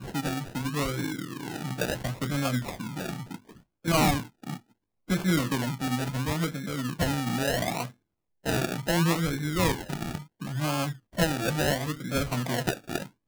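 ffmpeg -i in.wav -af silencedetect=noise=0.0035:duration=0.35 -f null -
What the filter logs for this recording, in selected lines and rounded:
silence_start: 4.59
silence_end: 5.08 | silence_duration: 0.49
silence_start: 7.92
silence_end: 8.44 | silence_duration: 0.52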